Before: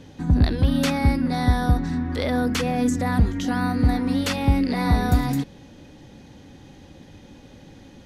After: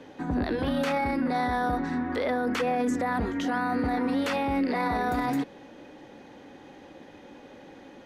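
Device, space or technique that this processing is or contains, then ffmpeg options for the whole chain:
DJ mixer with the lows and highs turned down: -filter_complex "[0:a]asettb=1/sr,asplit=3[link_01][link_02][link_03];[link_01]atrim=end=0.564[link_04];[link_02]atrim=start=0.56:end=1.05,asetpts=PTS-STARTPTS,afade=type=in:duration=0.004:curve=qsin,afade=type=out:start_time=0.486:duration=0.004:curve=qsin,asplit=2[link_05][link_06];[link_06]adelay=23,volume=-5dB[link_07];[link_05][link_07]amix=inputs=2:normalize=0,atrim=end_sample=21609[link_08];[link_03]atrim=start=1.046[link_09];[link_04][link_08]acrossfade=duration=0.004:curve1=hsin:curve2=qsin[link_10];[link_10][link_09]acrossfade=duration=0.004:curve1=qsin:curve2=hsin,acrossover=split=280 2500:gain=0.1 1 0.251[link_11][link_12][link_13];[link_11][link_12][link_13]amix=inputs=3:normalize=0,alimiter=limit=-23.5dB:level=0:latency=1:release=17,volume=4dB"

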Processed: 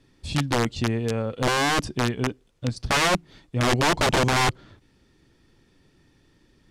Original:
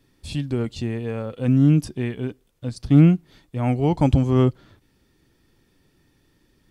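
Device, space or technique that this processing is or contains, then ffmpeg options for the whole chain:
overflowing digital effects unit: -af "aeval=exprs='(mod(7.08*val(0)+1,2)-1)/7.08':channel_layout=same,lowpass=8000,volume=2dB"

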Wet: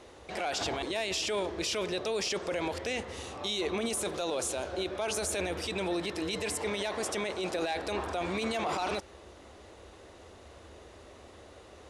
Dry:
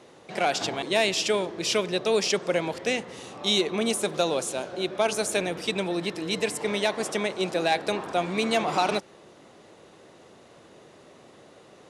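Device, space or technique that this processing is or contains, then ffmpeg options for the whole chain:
car stereo with a boomy subwoofer: -af "lowshelf=frequency=100:width_type=q:width=3:gain=13,alimiter=limit=-23.5dB:level=0:latency=1:release=13"

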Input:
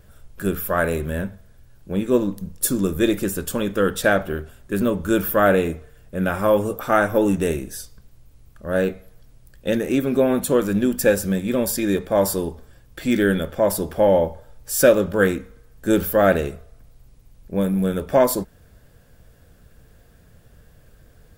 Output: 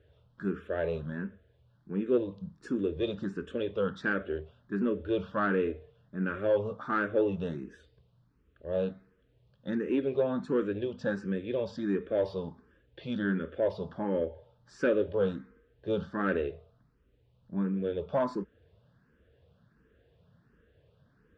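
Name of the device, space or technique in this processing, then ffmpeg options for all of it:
barber-pole phaser into a guitar amplifier: -filter_complex "[0:a]asplit=2[link_01][link_02];[link_02]afreqshift=1.4[link_03];[link_01][link_03]amix=inputs=2:normalize=1,asoftclip=type=tanh:threshold=-10.5dB,highpass=86,equalizer=frequency=430:width_type=q:width=4:gain=4,equalizer=frequency=750:width_type=q:width=4:gain=-6,equalizer=frequency=2200:width_type=q:width=4:gain=-7,lowpass=frequency=3600:width=0.5412,lowpass=frequency=3600:width=1.3066,volume=-7dB"

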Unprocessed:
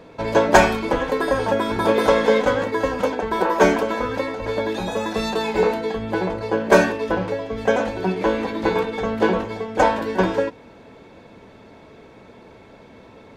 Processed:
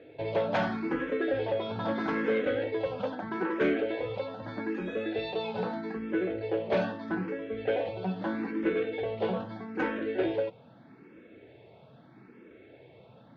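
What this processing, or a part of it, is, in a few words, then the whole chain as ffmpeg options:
barber-pole phaser into a guitar amplifier: -filter_complex "[0:a]asplit=2[link_01][link_02];[link_02]afreqshift=0.79[link_03];[link_01][link_03]amix=inputs=2:normalize=1,asoftclip=type=tanh:threshold=-15dB,highpass=110,equalizer=frequency=130:width_type=q:width=4:gain=9,equalizer=frequency=330:width_type=q:width=4:gain=5,equalizer=frequency=1000:width_type=q:width=4:gain=-9,lowpass=frequency=3700:width=0.5412,lowpass=frequency=3700:width=1.3066,volume=-6dB"

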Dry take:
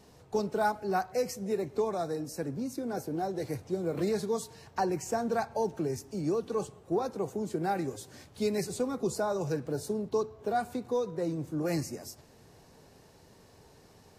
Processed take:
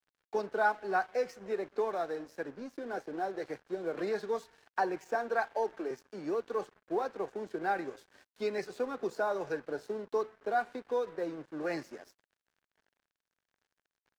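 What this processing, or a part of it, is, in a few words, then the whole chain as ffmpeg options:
pocket radio on a weak battery: -filter_complex "[0:a]asettb=1/sr,asplit=3[link_01][link_02][link_03];[link_01]atrim=end=5.154[link_04];[link_02]atrim=start=5.15:end=5.91,asetpts=PTS-STARTPTS,afade=type=in:duration=0.004:curve=qsin,afade=type=out:start_time=0.756:duration=0.004:curve=qsin,highpass=frequency=240:width=0.5412,highpass=frequency=240:width=1.3066[link_05];[link_03]atrim=start=5.906[link_06];[link_04][link_05]acrossfade=duration=0.004:curve1=hsin:curve2=qsin[link_07];[link_07][link_06]acrossfade=duration=0.004:curve1=qsin:curve2=hsin,highpass=380,lowpass=3500,aeval=exprs='sgn(val(0))*max(abs(val(0))-0.002,0)':channel_layout=same,equalizer=frequency=1600:width_type=o:width=0.38:gain=7"

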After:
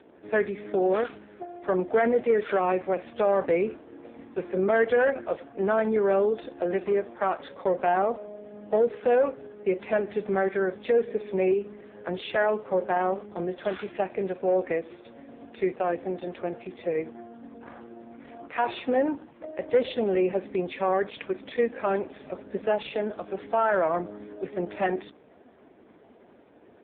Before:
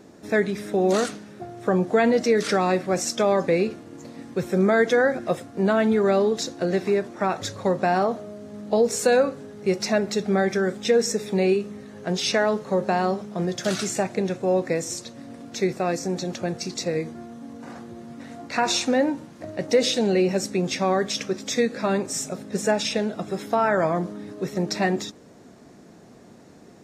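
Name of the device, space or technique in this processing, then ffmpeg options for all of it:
telephone: -filter_complex "[0:a]asplit=3[link_01][link_02][link_03];[link_01]afade=type=out:start_time=3.36:duration=0.02[link_04];[link_02]equalizer=frequency=250:width_type=o:width=0.36:gain=3,afade=type=in:start_time=3.36:duration=0.02,afade=type=out:start_time=3.76:duration=0.02[link_05];[link_03]afade=type=in:start_time=3.76:duration=0.02[link_06];[link_04][link_05][link_06]amix=inputs=3:normalize=0,highpass=310,lowpass=3400,asoftclip=type=tanh:threshold=-13dB" -ar 8000 -c:a libopencore_amrnb -b:a 4750

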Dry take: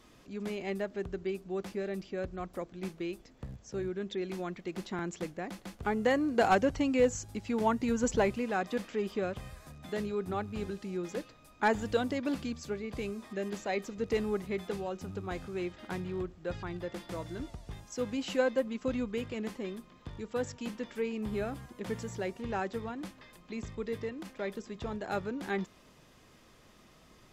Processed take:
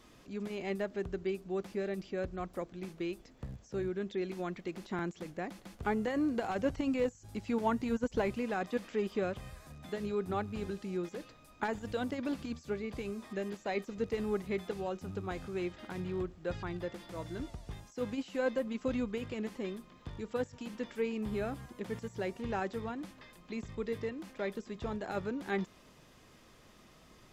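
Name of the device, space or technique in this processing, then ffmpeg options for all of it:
de-esser from a sidechain: -filter_complex "[0:a]asplit=2[link_01][link_02];[link_02]highpass=frequency=5900:width=0.5412,highpass=frequency=5900:width=1.3066,apad=whole_len=1205188[link_03];[link_01][link_03]sidechaincompress=threshold=-60dB:ratio=10:attack=1.5:release=22"

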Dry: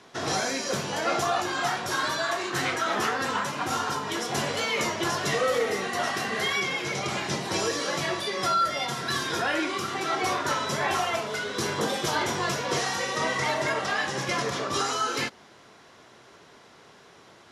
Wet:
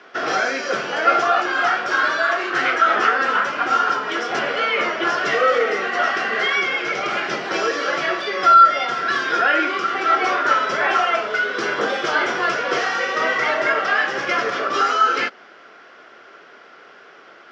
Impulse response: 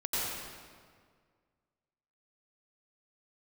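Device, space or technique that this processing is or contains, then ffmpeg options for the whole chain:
phone earpiece: -filter_complex "[0:a]highpass=370,equalizer=frequency=950:width_type=q:width=4:gain=-8,equalizer=frequency=1400:width_type=q:width=4:gain=8,equalizer=frequency=3900:width_type=q:width=4:gain=-10,lowpass=frequency=4500:width=0.5412,lowpass=frequency=4500:width=1.3066,asettb=1/sr,asplit=3[link_01][link_02][link_03];[link_01]atrim=end=4.394[link_04];[link_02]atrim=start=4.39:end=5.07,asetpts=PTS-STARTPTS,afade=type=in:duration=0.004:curve=qsin,afade=type=out:start_time=0.676:duration=0.004:curve=qsin,acrossover=split=4500[link_05][link_06];[link_06]acompressor=threshold=-55dB:ratio=4:attack=1:release=60[link_07];[link_05][link_07]amix=inputs=2:normalize=0[link_08];[link_03]atrim=start=5.066[link_09];[link_04][link_08]acrossfade=duration=0.004:curve1=hsin:curve2=qsin[link_10];[link_10][link_09]acrossfade=duration=0.004:curve1=qsin:curve2=hsin,volume=8dB"

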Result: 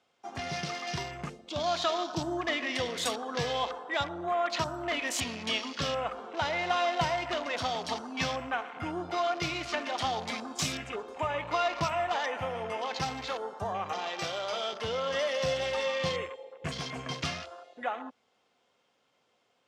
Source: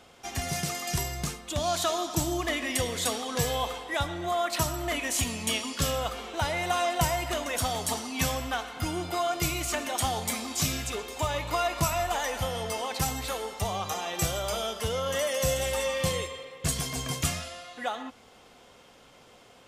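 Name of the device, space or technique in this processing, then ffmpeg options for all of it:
over-cleaned archive recording: -filter_complex "[0:a]highpass=110,lowpass=6800,afwtdn=0.0112,asettb=1/sr,asplit=3[link_01][link_02][link_03];[link_01]atrim=end=14.084[link_04];[link_02]atrim=start=14.08:end=14.73,asetpts=PTS-STARTPTS,afade=type=in:duration=0.004:curve=qsin,afade=type=out:start_time=0.646:duration=0.004:curve=qsin,highpass=frequency=320:poles=1[link_05];[link_03]atrim=start=14.726[link_06];[link_04][link_05]acrossfade=duration=0.004:curve1=hsin:curve2=qsin[link_07];[link_07][link_06]acrossfade=duration=0.004:curve1=qsin:curve2=hsin,lowshelf=frequency=320:gain=-5.5"

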